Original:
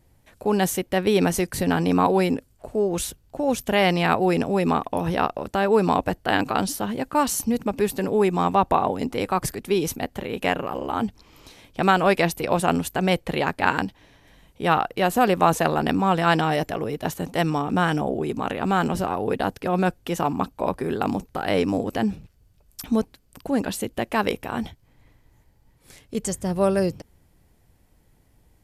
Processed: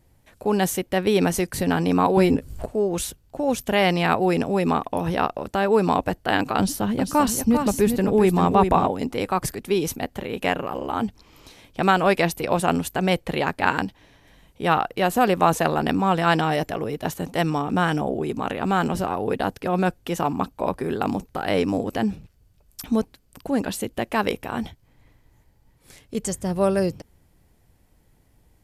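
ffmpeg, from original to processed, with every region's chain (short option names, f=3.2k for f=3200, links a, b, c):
-filter_complex "[0:a]asettb=1/sr,asplit=3[a][b][c];[a]atrim=end=2.174[d];[b]atrim=start=2.17:end=2.66,asetpts=PTS-STARTPTS,afade=t=in:d=0.004:c=qsin,afade=t=out:st=0.486:d=0.004:c=qsin,lowshelf=f=220:g=11.5,acompressor=mode=upward:threshold=-19dB:ratio=2.5:attack=3.2:release=140:knee=2.83:detection=peak,asplit=2[e][f];[f]adelay=14,volume=-8dB[g];[e][g]amix=inputs=2:normalize=0,atrim=end_sample=21609[h];[c]atrim=start=2.656[i];[d][h]acrossfade=d=0.004:c1=hsin:c2=qsin[j];[j][i]acrossfade=d=0.004:c1=qsin:c2=hsin,asettb=1/sr,asplit=3[k][l][m];[k]atrim=end=6.594[n];[l]atrim=start=6.59:end=8.87,asetpts=PTS-STARTPTS,afade=t=in:d=0.004:c=qsin,afade=t=out:st=2.276:d=0.004:c=qsin,lowshelf=f=230:g=8.5,aecho=1:1:395:0.473,atrim=end_sample=100548[o];[m]atrim=start=8.866[p];[n][o]acrossfade=d=0.004:c1=hsin:c2=qsin[q];[q][p]acrossfade=d=0.004:c1=qsin:c2=hsin"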